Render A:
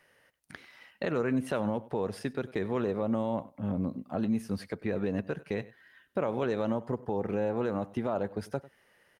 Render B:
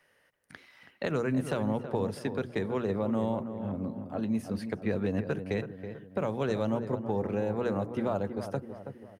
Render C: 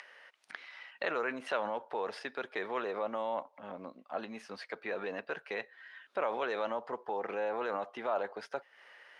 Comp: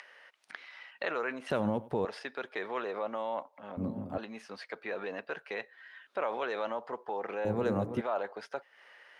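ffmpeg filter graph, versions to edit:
-filter_complex "[1:a]asplit=2[s0][s1];[2:a]asplit=4[s2][s3][s4][s5];[s2]atrim=end=1.502[s6];[0:a]atrim=start=1.498:end=2.052[s7];[s3]atrim=start=2.048:end=3.772[s8];[s0]atrim=start=3.768:end=4.182[s9];[s4]atrim=start=4.178:end=7.452[s10];[s1]atrim=start=7.448:end=8.012[s11];[s5]atrim=start=8.008[s12];[s6][s7]acrossfade=d=0.004:c1=hsin:c2=hsin[s13];[s13][s8]acrossfade=d=0.004:c1=hsin:c2=hsin[s14];[s14][s9]acrossfade=d=0.004:c1=hsin:c2=hsin[s15];[s15][s10]acrossfade=d=0.004:c1=hsin:c2=hsin[s16];[s16][s11]acrossfade=d=0.004:c1=hsin:c2=hsin[s17];[s17][s12]acrossfade=d=0.004:c1=hsin:c2=hsin"

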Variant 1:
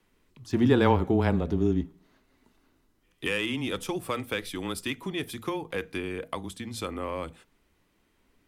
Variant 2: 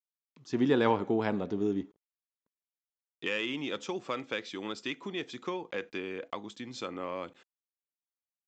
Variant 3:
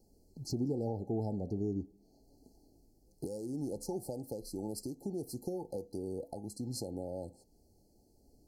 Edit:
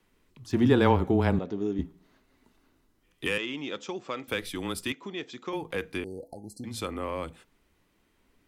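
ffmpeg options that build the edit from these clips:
-filter_complex "[1:a]asplit=3[s0][s1][s2];[0:a]asplit=5[s3][s4][s5][s6][s7];[s3]atrim=end=1.392[s8];[s0]atrim=start=1.388:end=1.792[s9];[s4]atrim=start=1.788:end=3.382[s10];[s1]atrim=start=3.378:end=4.282[s11];[s5]atrim=start=4.278:end=4.922[s12];[s2]atrim=start=4.918:end=5.532[s13];[s6]atrim=start=5.528:end=6.042[s14];[2:a]atrim=start=6.038:end=6.642[s15];[s7]atrim=start=6.638[s16];[s8][s9]acrossfade=d=0.004:c1=hsin:c2=hsin[s17];[s17][s10]acrossfade=d=0.004:c1=hsin:c2=hsin[s18];[s18][s11]acrossfade=d=0.004:c1=hsin:c2=hsin[s19];[s19][s12]acrossfade=d=0.004:c1=hsin:c2=hsin[s20];[s20][s13]acrossfade=d=0.004:c1=hsin:c2=hsin[s21];[s21][s14]acrossfade=d=0.004:c1=hsin:c2=hsin[s22];[s22][s15]acrossfade=d=0.004:c1=hsin:c2=hsin[s23];[s23][s16]acrossfade=d=0.004:c1=hsin:c2=hsin"

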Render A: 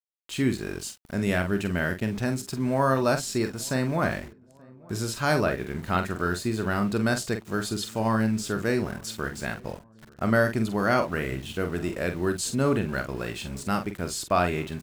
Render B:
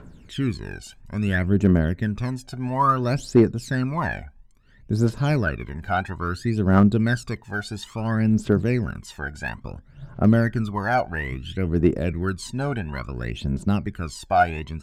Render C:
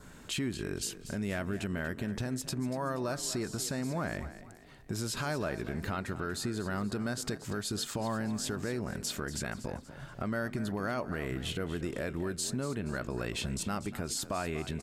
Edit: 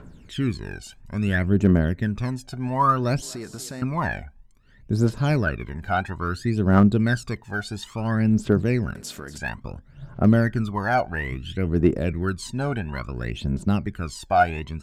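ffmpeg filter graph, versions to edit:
-filter_complex "[2:a]asplit=2[s0][s1];[1:a]asplit=3[s2][s3][s4];[s2]atrim=end=3.222[s5];[s0]atrim=start=3.218:end=3.822[s6];[s3]atrim=start=3.818:end=8.952[s7];[s1]atrim=start=8.948:end=9.382[s8];[s4]atrim=start=9.378[s9];[s5][s6]acrossfade=d=0.004:c1=hsin:c2=hsin[s10];[s10][s7]acrossfade=d=0.004:c1=hsin:c2=hsin[s11];[s11][s8]acrossfade=d=0.004:c1=hsin:c2=hsin[s12];[s12][s9]acrossfade=d=0.004:c1=hsin:c2=hsin"

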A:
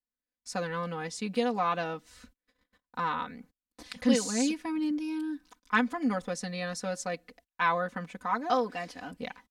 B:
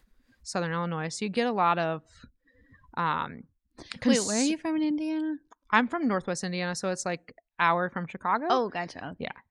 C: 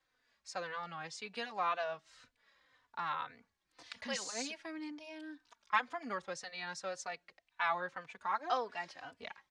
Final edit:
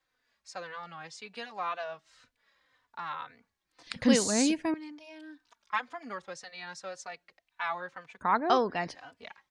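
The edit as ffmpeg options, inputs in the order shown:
-filter_complex "[1:a]asplit=2[s0][s1];[2:a]asplit=3[s2][s3][s4];[s2]atrim=end=3.872[s5];[s0]atrim=start=3.868:end=4.742[s6];[s3]atrim=start=4.738:end=8.212[s7];[s1]atrim=start=8.208:end=8.952[s8];[s4]atrim=start=8.948[s9];[s5][s6]acrossfade=d=0.004:c1=hsin:c2=hsin[s10];[s10][s7]acrossfade=d=0.004:c1=hsin:c2=hsin[s11];[s11][s8]acrossfade=d=0.004:c1=hsin:c2=hsin[s12];[s12][s9]acrossfade=d=0.004:c1=hsin:c2=hsin"

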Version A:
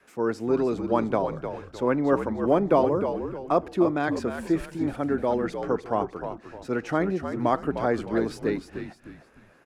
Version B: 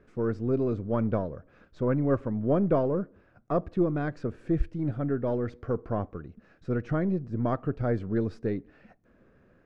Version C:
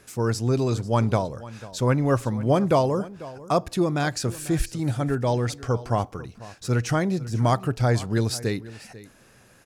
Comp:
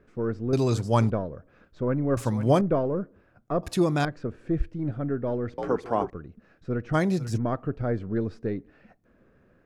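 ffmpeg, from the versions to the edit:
-filter_complex "[2:a]asplit=4[s0][s1][s2][s3];[1:a]asplit=6[s4][s5][s6][s7][s8][s9];[s4]atrim=end=0.532[s10];[s0]atrim=start=0.528:end=1.102[s11];[s5]atrim=start=1.098:end=2.172[s12];[s1]atrim=start=2.168:end=2.612[s13];[s6]atrim=start=2.608:end=3.632[s14];[s2]atrim=start=3.628:end=4.052[s15];[s7]atrim=start=4.048:end=5.582[s16];[0:a]atrim=start=5.578:end=6.102[s17];[s8]atrim=start=6.098:end=6.95[s18];[s3]atrim=start=6.93:end=7.38[s19];[s9]atrim=start=7.36[s20];[s10][s11]acrossfade=d=0.004:c1=hsin:c2=hsin[s21];[s21][s12]acrossfade=d=0.004:c1=hsin:c2=hsin[s22];[s22][s13]acrossfade=d=0.004:c1=hsin:c2=hsin[s23];[s23][s14]acrossfade=d=0.004:c1=hsin:c2=hsin[s24];[s24][s15]acrossfade=d=0.004:c1=hsin:c2=hsin[s25];[s25][s16]acrossfade=d=0.004:c1=hsin:c2=hsin[s26];[s26][s17]acrossfade=d=0.004:c1=hsin:c2=hsin[s27];[s27][s18]acrossfade=d=0.004:c1=hsin:c2=hsin[s28];[s28][s19]acrossfade=d=0.02:c1=tri:c2=tri[s29];[s29][s20]acrossfade=d=0.02:c1=tri:c2=tri"

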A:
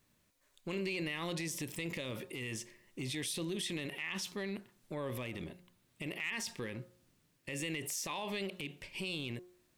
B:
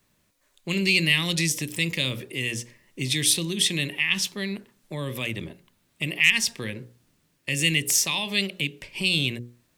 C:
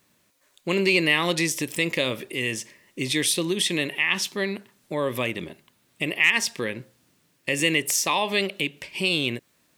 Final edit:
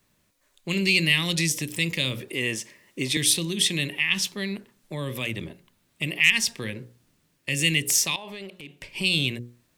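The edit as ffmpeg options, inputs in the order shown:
-filter_complex "[1:a]asplit=3[s0][s1][s2];[s0]atrim=end=2.282[s3];[2:a]atrim=start=2.278:end=3.172[s4];[s1]atrim=start=3.168:end=8.162[s5];[0:a]atrim=start=8.158:end=8.812[s6];[s2]atrim=start=8.808[s7];[s3][s4]acrossfade=d=0.004:c1=hsin:c2=hsin[s8];[s8][s5]acrossfade=d=0.004:c1=hsin:c2=hsin[s9];[s9][s6]acrossfade=d=0.004:c1=hsin:c2=hsin[s10];[s10][s7]acrossfade=d=0.004:c1=hsin:c2=hsin"

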